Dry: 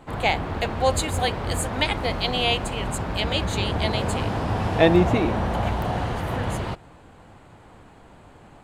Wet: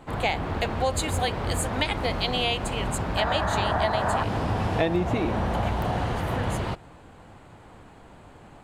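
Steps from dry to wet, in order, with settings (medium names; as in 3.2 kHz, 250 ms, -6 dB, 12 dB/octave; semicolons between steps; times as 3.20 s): time-frequency box 3.17–4.23 s, 570–2000 Hz +10 dB; compression 4:1, threshold -21 dBFS, peak gain reduction 9.5 dB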